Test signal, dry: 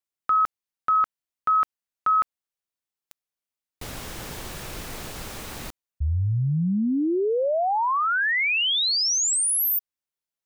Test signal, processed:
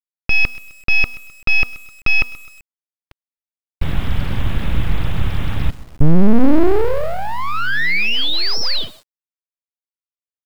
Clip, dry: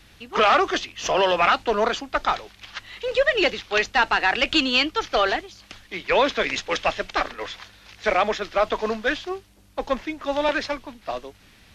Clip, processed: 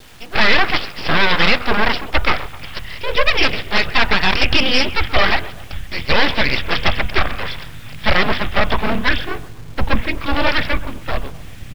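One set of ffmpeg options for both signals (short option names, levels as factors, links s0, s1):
-filter_complex "[0:a]asubboost=boost=9.5:cutoff=120,asplit=2[s0][s1];[s1]adelay=129,lowpass=f=1800:p=1,volume=0.119,asplit=2[s2][s3];[s3]adelay=129,lowpass=f=1800:p=1,volume=0.51,asplit=2[s4][s5];[s5]adelay=129,lowpass=f=1800:p=1,volume=0.51,asplit=2[s6][s7];[s7]adelay=129,lowpass=f=1800:p=1,volume=0.51[s8];[s2][s4][s6][s8]amix=inputs=4:normalize=0[s9];[s0][s9]amix=inputs=2:normalize=0,aresample=8000,aresample=44100,aresample=11025,aeval=exprs='abs(val(0))':c=same,aresample=44100,bandreject=f=243.2:t=h:w=4,bandreject=f=486.4:t=h:w=4,bandreject=f=729.6:t=h:w=4,bandreject=f=972.8:t=h:w=4,bandreject=f=1216:t=h:w=4,bandreject=f=1459.2:t=h:w=4,acontrast=41,adynamicequalizer=threshold=0.0178:dfrequency=2100:dqfactor=1.4:tfrequency=2100:tqfactor=1.4:attack=5:release=100:ratio=0.3:range=2:mode=boostabove:tftype=bell,acrusher=bits=7:mix=0:aa=0.000001,alimiter=level_in=1.68:limit=0.891:release=50:level=0:latency=1,volume=0.891"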